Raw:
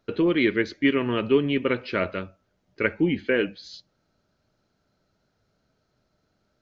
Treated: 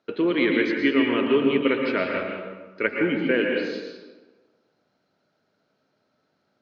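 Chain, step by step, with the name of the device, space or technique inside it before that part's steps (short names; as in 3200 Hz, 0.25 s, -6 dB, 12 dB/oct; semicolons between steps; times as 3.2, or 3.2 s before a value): supermarket ceiling speaker (BPF 230–5100 Hz; reverb RT60 1.3 s, pre-delay 0.107 s, DRR 0.5 dB)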